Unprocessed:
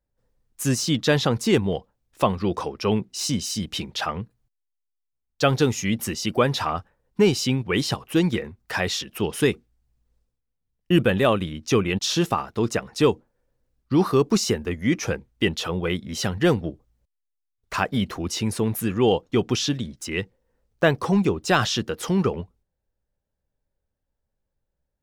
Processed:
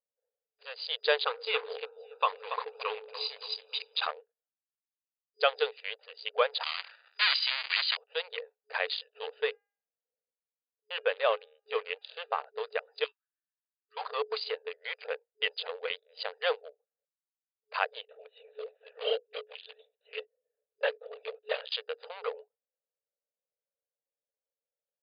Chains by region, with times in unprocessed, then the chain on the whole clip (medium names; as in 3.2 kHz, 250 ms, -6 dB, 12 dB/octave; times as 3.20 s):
1.26–4.07 s: comb 0.8 ms, depth 69% + de-hum 79.01 Hz, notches 21 + two-band feedback delay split 430 Hz, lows 93 ms, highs 283 ms, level -7.5 dB
6.63–7.97 s: square wave that keeps the level + high-pass 1.4 kHz 24 dB/octave + decay stretcher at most 32 dB/s
9.39–12.46 s: distance through air 210 m + de-hum 405.8 Hz, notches 8
13.04–13.97 s: steep high-pass 1.1 kHz 96 dB/octave + band-stop 1.4 kHz, Q 9.4
18.01–21.72 s: de-esser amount 55% + static phaser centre 390 Hz, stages 4 + LPC vocoder at 8 kHz whisper
whole clip: local Wiener filter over 41 samples; treble shelf 3.1 kHz +9 dB; FFT band-pass 420–4900 Hz; trim -5.5 dB